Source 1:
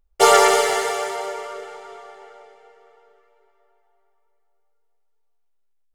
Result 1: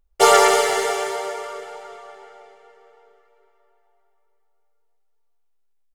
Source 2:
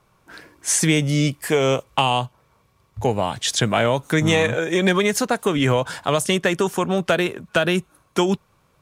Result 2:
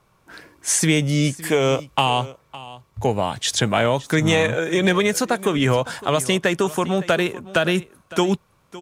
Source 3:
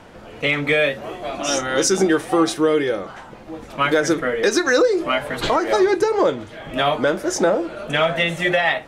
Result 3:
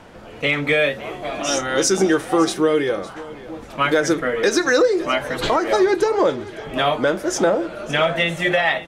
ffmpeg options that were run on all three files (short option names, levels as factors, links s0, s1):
-af "aecho=1:1:560:0.126"